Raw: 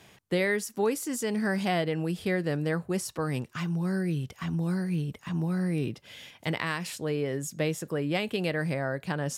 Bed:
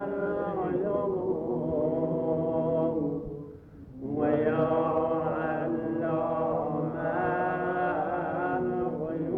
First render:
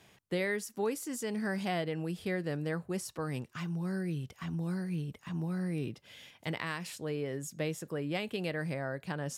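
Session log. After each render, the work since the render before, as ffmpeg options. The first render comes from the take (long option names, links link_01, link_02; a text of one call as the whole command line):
ffmpeg -i in.wav -af "volume=-6dB" out.wav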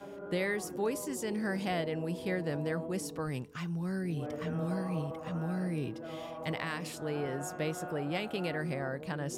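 ffmpeg -i in.wav -i bed.wav -filter_complex "[1:a]volume=-14dB[link_01];[0:a][link_01]amix=inputs=2:normalize=0" out.wav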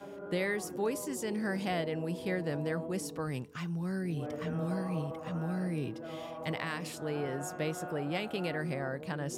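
ffmpeg -i in.wav -af "highpass=54" out.wav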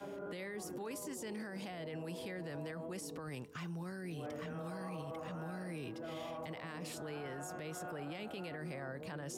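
ffmpeg -i in.wav -filter_complex "[0:a]acrossover=split=340|790[link_01][link_02][link_03];[link_01]acompressor=threshold=-44dB:ratio=4[link_04];[link_02]acompressor=threshold=-45dB:ratio=4[link_05];[link_03]acompressor=threshold=-43dB:ratio=4[link_06];[link_04][link_05][link_06]amix=inputs=3:normalize=0,alimiter=level_in=12dB:limit=-24dB:level=0:latency=1:release=13,volume=-12dB" out.wav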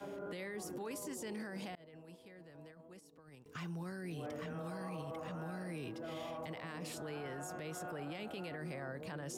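ffmpeg -i in.wav -filter_complex "[0:a]asettb=1/sr,asplit=3[link_01][link_02][link_03];[link_01]atrim=end=1.754[link_04];[link_02]atrim=start=1.75:end=3.46,asetpts=PTS-STARTPTS,afade=type=in:duration=0.004:curve=qsin,afade=type=out:start_time=1.706:duration=0.004:curve=qsin,agate=range=-33dB:threshold=-35dB:ratio=3:release=100:detection=peak[link_05];[link_03]atrim=start=3.456[link_06];[link_04][link_05]acrossfade=duration=0.004:curve1=hsin:curve2=qsin[link_07];[link_07][link_06]acrossfade=duration=0.004:curve1=qsin:curve2=hsin" out.wav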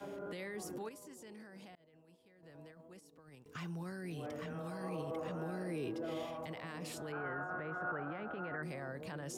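ffmpeg -i in.wav -filter_complex "[0:a]asettb=1/sr,asplit=3[link_01][link_02][link_03];[link_01]atrim=end=4.834[link_04];[link_02]atrim=start=4.83:end=6.25,asetpts=PTS-STARTPTS,afade=type=in:duration=0.004:curve=qsin,afade=type=out:start_time=1.416:duration=0.004:curve=qsin,equalizer=frequency=400:width=1.5:gain=8[link_05];[link_03]atrim=start=6.246[link_06];[link_04][link_05]acrossfade=duration=0.004:curve1=hsin:curve2=qsin[link_07];[link_07][link_06]acrossfade=duration=0.004:curve1=qsin:curve2=hsin,asettb=1/sr,asplit=3[link_08][link_09][link_10];[link_08]atrim=end=7.124[link_11];[link_09]atrim=start=7.12:end=8.63,asetpts=PTS-STARTPTS,afade=type=in:duration=0.004:curve=qsin,afade=type=out:start_time=1.506:duration=0.004:curve=qsin,lowpass=frequency=1400:width_type=q:width=4.5[link_12];[link_10]atrim=start=8.626[link_13];[link_11][link_12]acrossfade=duration=0.004:curve1=hsin:curve2=qsin[link_14];[link_14][link_13]acrossfade=duration=0.004:curve1=qsin:curve2=hsin,asplit=3[link_15][link_16][link_17];[link_15]atrim=end=0.892[link_18];[link_16]atrim=start=0.888:end=2.432,asetpts=PTS-STARTPTS,volume=-9.5dB[link_19];[link_17]atrim=start=2.428[link_20];[link_18][link_19]acrossfade=duration=0.004:curve1=hsin:curve2=hsin[link_21];[link_21][link_20]acrossfade=duration=0.004:curve1=hsin:curve2=hsin" out.wav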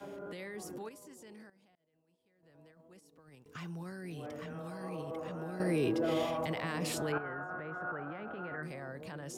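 ffmpeg -i in.wav -filter_complex "[0:a]asettb=1/sr,asplit=3[link_01][link_02][link_03];[link_01]atrim=end=8.234[link_04];[link_02]atrim=start=8.23:end=8.71,asetpts=PTS-STARTPTS,afade=type=in:duration=0.004:curve=qsin,afade=type=out:start_time=0.476:duration=0.004:curve=qsin,asplit=2[link_05][link_06];[link_06]adelay=45,volume=-11dB[link_07];[link_05][link_07]amix=inputs=2:normalize=0,atrim=end_sample=21168[link_08];[link_03]atrim=start=8.706[link_09];[link_04][link_08]acrossfade=duration=0.004:curve1=hsin:curve2=qsin[link_10];[link_10][link_09]acrossfade=duration=0.004:curve1=qsin:curve2=hsin,asplit=4[link_11][link_12][link_13][link_14];[link_11]atrim=end=1.5,asetpts=PTS-STARTPTS,afade=type=out:start_time=1.496:duration=0.004:curve=hsin:silence=0.188365[link_15];[link_12]atrim=start=1.5:end=5.602,asetpts=PTS-STARTPTS,afade=type=in:duration=1.7:curve=qua:silence=0.188365[link_16];[link_13]atrim=start=5.598:end=7.182,asetpts=PTS-STARTPTS,volume=9dB[link_17];[link_14]atrim=start=7.178[link_18];[link_15][link_16]concat=n=2:v=0:a=1[link_19];[link_19][link_17]acrossfade=duration=0.004:curve1=hsin:curve2=hsin[link_20];[link_20][link_18]acrossfade=duration=0.004:curve1=hsin:curve2=hsin" out.wav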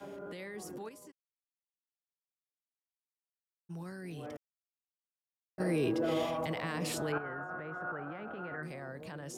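ffmpeg -i in.wav -filter_complex "[0:a]asplit=3[link_01][link_02][link_03];[link_01]afade=type=out:start_time=1.1:duration=0.02[link_04];[link_02]acrusher=bits=3:mix=0:aa=0.5,afade=type=in:start_time=1.1:duration=0.02,afade=type=out:start_time=3.69:duration=0.02[link_05];[link_03]afade=type=in:start_time=3.69:duration=0.02[link_06];[link_04][link_05][link_06]amix=inputs=3:normalize=0,asplit=3[link_07][link_08][link_09];[link_07]atrim=end=4.37,asetpts=PTS-STARTPTS,afade=type=out:start_time=4.366:duration=0.004:curve=hsin[link_10];[link_08]atrim=start=4.37:end=5.58,asetpts=PTS-STARTPTS,volume=0[link_11];[link_09]atrim=start=5.58,asetpts=PTS-STARTPTS,afade=type=in:duration=0.004:curve=hsin[link_12];[link_10][link_11][link_12]concat=n=3:v=0:a=1" out.wav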